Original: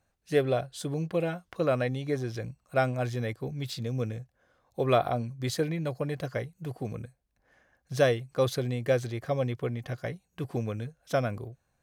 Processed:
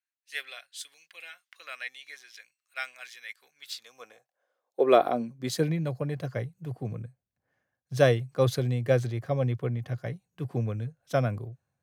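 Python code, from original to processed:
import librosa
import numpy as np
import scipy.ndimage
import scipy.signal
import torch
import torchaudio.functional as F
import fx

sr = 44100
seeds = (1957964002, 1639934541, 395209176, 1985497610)

y = fx.filter_sweep_highpass(x, sr, from_hz=2000.0, to_hz=110.0, start_s=3.33, end_s=5.92, q=1.9)
y = fx.band_widen(y, sr, depth_pct=40)
y = F.gain(torch.from_numpy(y), -1.5).numpy()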